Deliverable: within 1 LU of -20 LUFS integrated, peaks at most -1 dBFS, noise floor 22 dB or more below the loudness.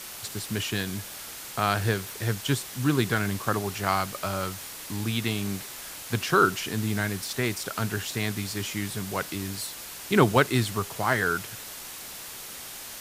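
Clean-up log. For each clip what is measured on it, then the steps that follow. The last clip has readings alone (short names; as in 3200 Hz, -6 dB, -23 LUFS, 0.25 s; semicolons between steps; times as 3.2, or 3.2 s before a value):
noise floor -41 dBFS; noise floor target -50 dBFS; loudness -28.0 LUFS; peak -4.5 dBFS; loudness target -20.0 LUFS
-> denoiser 9 dB, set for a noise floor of -41 dBFS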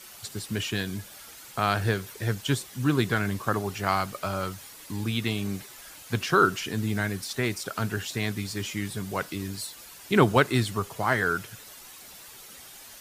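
noise floor -47 dBFS; noise floor target -50 dBFS
-> denoiser 6 dB, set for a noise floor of -47 dBFS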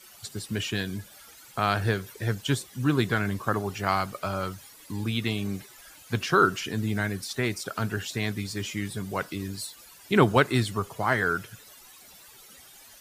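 noise floor -51 dBFS; loudness -28.0 LUFS; peak -5.0 dBFS; loudness target -20.0 LUFS
-> gain +8 dB; limiter -1 dBFS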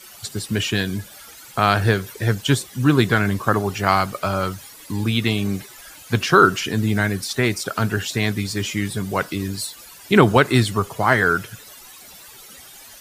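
loudness -20.5 LUFS; peak -1.0 dBFS; noise floor -43 dBFS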